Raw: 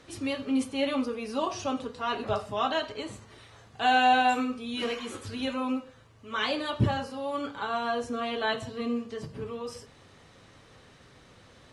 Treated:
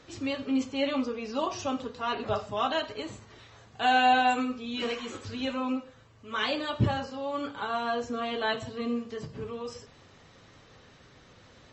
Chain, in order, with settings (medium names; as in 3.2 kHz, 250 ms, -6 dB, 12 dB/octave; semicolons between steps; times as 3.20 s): MP3 32 kbps 32 kHz